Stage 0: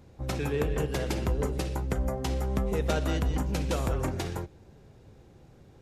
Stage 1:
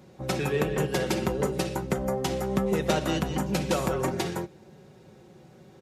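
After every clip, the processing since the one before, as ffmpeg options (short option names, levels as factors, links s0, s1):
-af "highpass=130,aecho=1:1:5.4:0.49,volume=1.58"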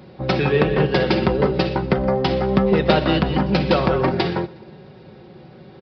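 -af "aecho=1:1:121|242|363|484:0.0631|0.0366|0.0212|0.0123,aresample=11025,aresample=44100,volume=2.82"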